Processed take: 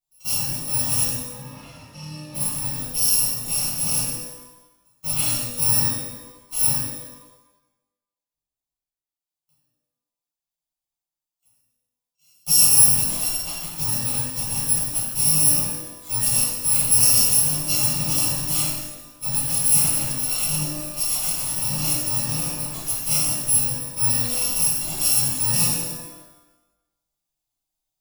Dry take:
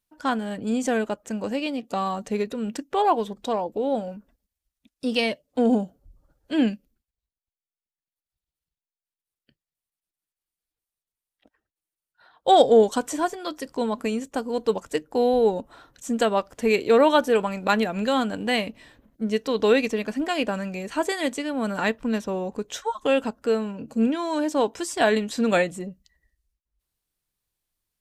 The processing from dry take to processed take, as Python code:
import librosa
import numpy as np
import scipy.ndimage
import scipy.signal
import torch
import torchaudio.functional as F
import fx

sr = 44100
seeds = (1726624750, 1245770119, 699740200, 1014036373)

p1 = fx.bit_reversed(x, sr, seeds[0], block=128)
p2 = fx.lowpass(p1, sr, hz=fx.line((1.07, 1900.0), (2.34, 3400.0)), slope=12, at=(1.07, 2.34), fade=0.02)
p3 = fx.schmitt(p2, sr, flips_db=-24.5)
p4 = p2 + (p3 * librosa.db_to_amplitude(-4.5))
p5 = fx.fixed_phaser(p4, sr, hz=330.0, stages=8)
p6 = fx.rev_shimmer(p5, sr, seeds[1], rt60_s=1.0, semitones=12, shimmer_db=-8, drr_db=-11.5)
y = p6 * librosa.db_to_amplitude(-11.0)